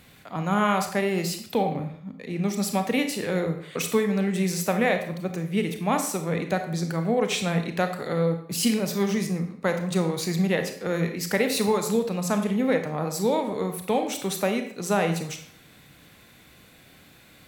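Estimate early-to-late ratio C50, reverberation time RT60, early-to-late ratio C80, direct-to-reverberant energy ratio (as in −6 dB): 8.5 dB, 0.60 s, 11.5 dB, 6.0 dB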